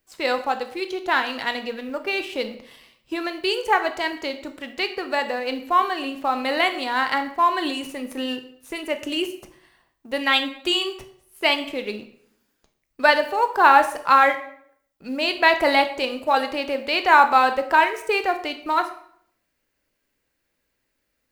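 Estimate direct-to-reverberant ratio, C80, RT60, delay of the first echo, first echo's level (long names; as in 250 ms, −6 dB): 8.0 dB, 15.0 dB, 0.65 s, no echo audible, no echo audible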